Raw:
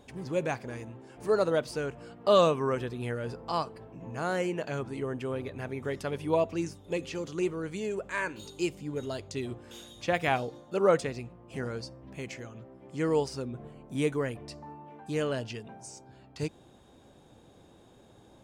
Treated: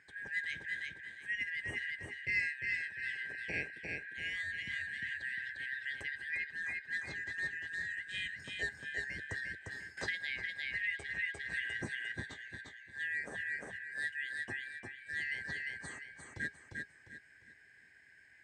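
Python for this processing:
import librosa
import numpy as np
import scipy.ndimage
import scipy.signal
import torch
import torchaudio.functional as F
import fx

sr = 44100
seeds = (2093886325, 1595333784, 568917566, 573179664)

y = fx.band_shuffle(x, sr, order='4123')
y = scipy.signal.sosfilt(scipy.signal.butter(4, 73.0, 'highpass', fs=sr, output='sos'), y)
y = fx.peak_eq(y, sr, hz=8200.0, db=15.0, octaves=0.22)
y = fx.echo_feedback(y, sr, ms=351, feedback_pct=34, wet_db=-4)
y = fx.rider(y, sr, range_db=3, speed_s=0.5)
y = fx.tilt_eq(y, sr, slope=-4.5)
y = fx.comb_fb(y, sr, f0_hz=410.0, decay_s=0.17, harmonics='all', damping=0.0, mix_pct=60)
y = fx.band_squash(y, sr, depth_pct=100, at=(9.97, 12.12))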